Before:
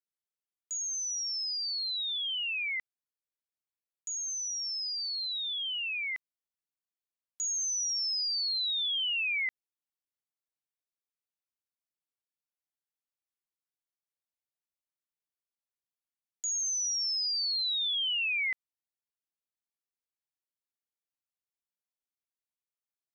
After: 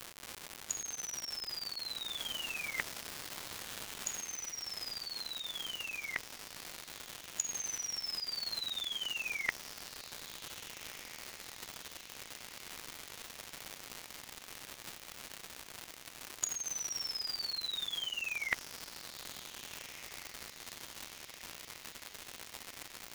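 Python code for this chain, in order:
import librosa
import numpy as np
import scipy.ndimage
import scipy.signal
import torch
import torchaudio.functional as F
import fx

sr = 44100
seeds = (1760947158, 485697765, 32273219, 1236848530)

y = fx.spec_gate(x, sr, threshold_db=-10, keep='weak')
y = fx.dmg_crackle(y, sr, seeds[0], per_s=fx.steps((0.0, 260.0), (2.13, 590.0), (4.17, 230.0)), level_db=-45.0)
y = fx.echo_diffused(y, sr, ms=1657, feedback_pct=73, wet_db=-16)
y = F.gain(torch.from_numpy(y), 15.5).numpy()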